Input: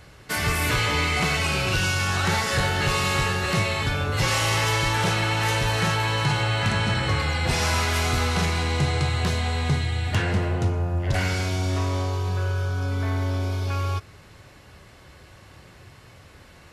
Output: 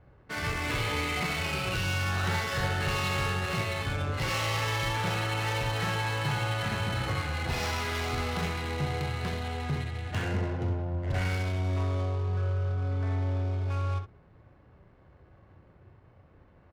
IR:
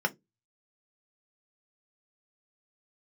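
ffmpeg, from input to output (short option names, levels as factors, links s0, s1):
-af "aecho=1:1:34|65:0.355|0.531,adynamicsmooth=sensitivity=4.5:basefreq=970,volume=0.376"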